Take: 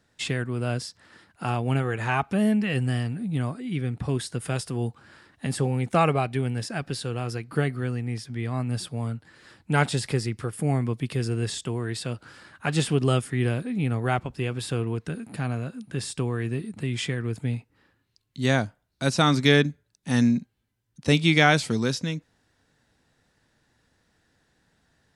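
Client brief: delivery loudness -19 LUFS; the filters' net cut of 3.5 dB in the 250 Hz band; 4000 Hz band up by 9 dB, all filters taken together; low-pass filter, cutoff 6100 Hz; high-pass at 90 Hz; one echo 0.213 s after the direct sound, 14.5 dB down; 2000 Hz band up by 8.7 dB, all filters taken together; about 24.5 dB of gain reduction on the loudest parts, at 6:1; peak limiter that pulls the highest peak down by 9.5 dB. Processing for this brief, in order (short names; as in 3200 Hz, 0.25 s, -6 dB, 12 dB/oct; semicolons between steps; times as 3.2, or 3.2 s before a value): HPF 90 Hz; LPF 6100 Hz; bell 250 Hz -4.5 dB; bell 2000 Hz +9 dB; bell 4000 Hz +8.5 dB; compressor 6:1, threshold -35 dBFS; limiter -26.5 dBFS; echo 0.213 s -14.5 dB; gain +20 dB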